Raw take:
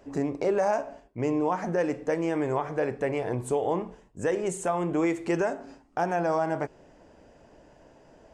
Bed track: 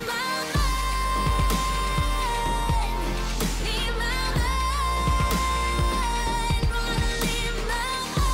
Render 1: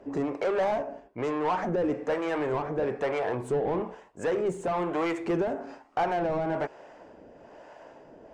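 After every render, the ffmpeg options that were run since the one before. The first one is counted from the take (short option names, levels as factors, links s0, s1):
-filter_complex "[0:a]asplit=2[s0][s1];[s1]highpass=f=720:p=1,volume=10,asoftclip=type=tanh:threshold=0.168[s2];[s0][s2]amix=inputs=2:normalize=0,lowpass=f=1300:p=1,volume=0.501,acrossover=split=490[s3][s4];[s3]aeval=exprs='val(0)*(1-0.7/2+0.7/2*cos(2*PI*1.1*n/s))':c=same[s5];[s4]aeval=exprs='val(0)*(1-0.7/2-0.7/2*cos(2*PI*1.1*n/s))':c=same[s6];[s5][s6]amix=inputs=2:normalize=0"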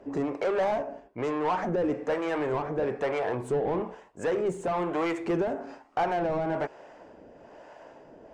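-af anull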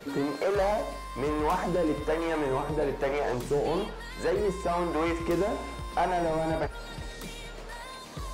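-filter_complex "[1:a]volume=0.178[s0];[0:a][s0]amix=inputs=2:normalize=0"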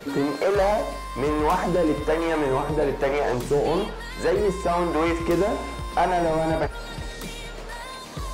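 -af "volume=1.88"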